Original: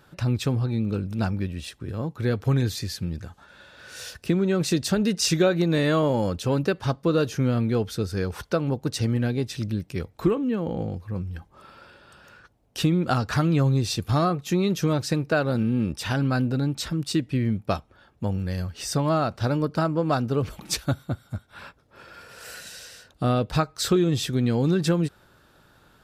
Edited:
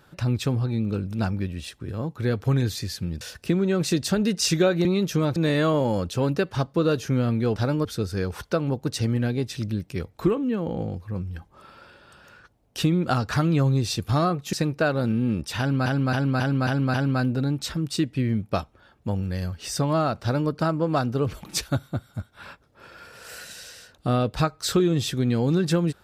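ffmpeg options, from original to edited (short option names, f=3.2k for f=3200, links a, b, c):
-filter_complex "[0:a]asplit=12[a][b][c][d][e][f][g][h][i][j][k][l];[a]atrim=end=3.212[m];[b]atrim=start=4.008:end=5.652[n];[c]atrim=start=14.528:end=15.042[o];[d]atrim=start=5.648:end=7.852[p];[e]atrim=start=19.378:end=19.672[q];[f]atrim=start=7.848:end=14.532[r];[g]atrim=start=15.038:end=16.372[s];[h]atrim=start=16.098:end=16.372[t];[i]atrim=start=16.098:end=16.372[u];[j]atrim=start=16.098:end=16.372[v];[k]atrim=start=16.098:end=16.372[w];[l]atrim=start=16.098[x];[m][n]acrossfade=d=0.004:c1=hsin:c2=hsin[y];[y][o]acrossfade=d=0.004:c1=hsin:c2=hsin[z];[z][p]acrossfade=d=0.004:c1=hsin:c2=hsin[aa];[aa][q]acrossfade=d=0.004:c1=hsin:c2=hsin[ab];[ab][r]acrossfade=d=0.004:c1=hsin:c2=hsin[ac];[ac][s]acrossfade=d=0.004:c1=hsin:c2=hsin[ad];[ad][t]acrossfade=d=0.004:c1=hsin:c2=hsin[ae];[ae][u]acrossfade=d=0.004:c1=hsin:c2=hsin[af];[af][v]acrossfade=d=0.004:c1=hsin:c2=hsin[ag];[ag][w]acrossfade=d=0.004:c1=hsin:c2=hsin[ah];[ah][x]acrossfade=d=0.004:c1=hsin:c2=hsin"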